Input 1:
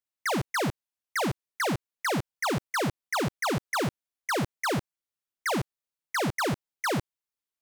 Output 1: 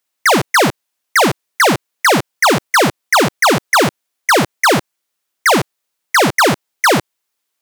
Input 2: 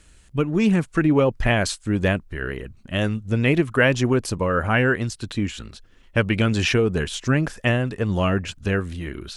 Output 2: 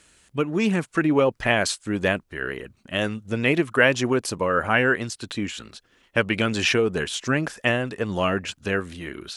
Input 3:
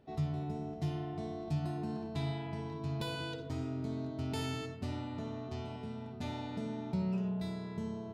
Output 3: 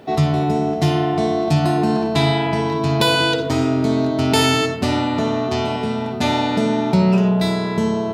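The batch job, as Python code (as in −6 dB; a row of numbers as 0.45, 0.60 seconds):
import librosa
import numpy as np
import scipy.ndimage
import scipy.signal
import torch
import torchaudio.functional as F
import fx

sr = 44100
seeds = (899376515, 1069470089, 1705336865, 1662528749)

y = fx.highpass(x, sr, hz=330.0, slope=6)
y = librosa.util.normalize(y) * 10.0 ** (-3 / 20.0)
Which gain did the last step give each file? +17.5, +1.0, +25.0 decibels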